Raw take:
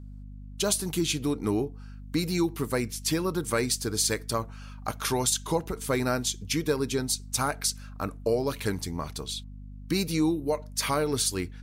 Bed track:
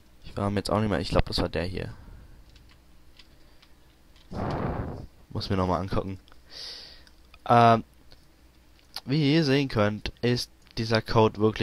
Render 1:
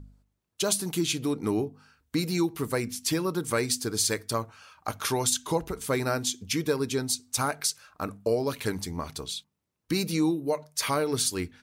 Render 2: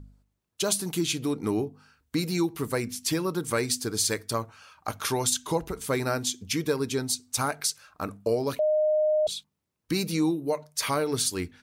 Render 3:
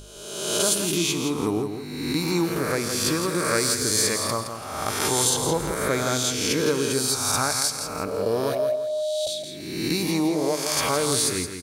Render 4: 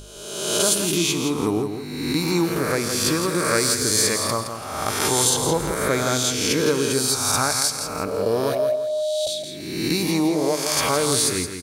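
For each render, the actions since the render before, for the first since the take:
de-hum 50 Hz, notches 5
8.59–9.27 bleep 614 Hz -20 dBFS
spectral swells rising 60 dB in 1.24 s; on a send: feedback echo 0.167 s, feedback 32%, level -8 dB
gain +2.5 dB

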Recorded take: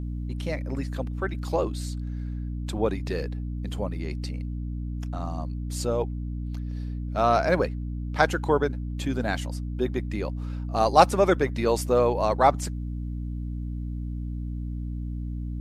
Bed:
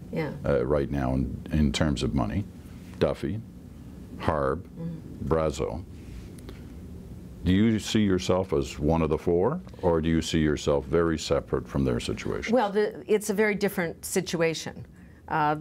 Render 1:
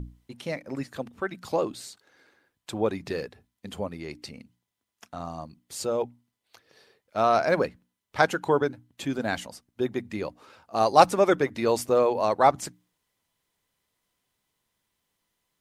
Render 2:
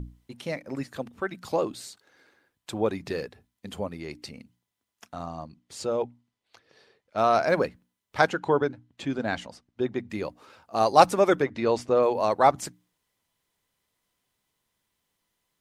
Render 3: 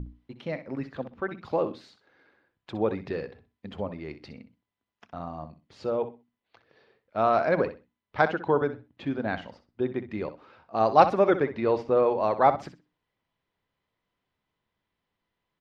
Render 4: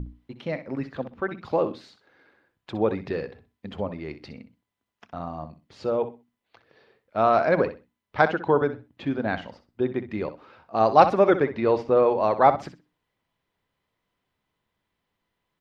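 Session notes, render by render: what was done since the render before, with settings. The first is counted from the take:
notches 60/120/180/240/300 Hz
5.25–7.18 air absorption 54 m; 8.29–10.1 air absorption 81 m; 11.42–12.03 air absorption 100 m
air absorption 280 m; feedback echo 63 ms, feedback 21%, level -12.5 dB
gain +3 dB; limiter -3 dBFS, peak gain reduction 1.5 dB

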